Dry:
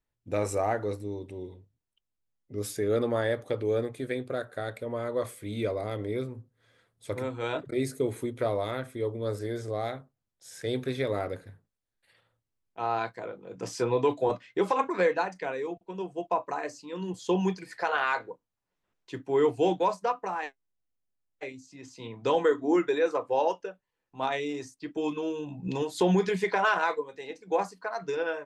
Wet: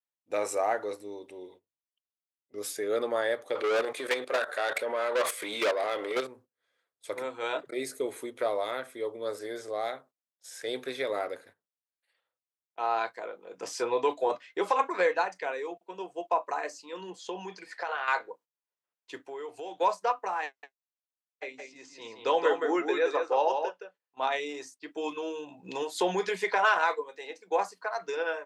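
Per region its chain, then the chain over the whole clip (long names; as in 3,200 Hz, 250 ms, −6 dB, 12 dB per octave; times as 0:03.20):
0:03.55–0:06.27: output level in coarse steps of 15 dB + mid-hump overdrive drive 29 dB, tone 5,500 Hz, clips at −18 dBFS
0:17.01–0:18.08: downward compressor 10 to 1, threshold −28 dBFS + high-frequency loss of the air 54 metres
0:19.20–0:19.81: parametric band 220 Hz −7 dB 0.53 octaves + downward compressor 4 to 1, threshold −36 dBFS
0:20.46–0:24.36: low-pass filter 6,500 Hz + single-tap delay 169 ms −5.5 dB
whole clip: high-pass filter 490 Hz 12 dB per octave; noise gate −56 dBFS, range −13 dB; level +1.5 dB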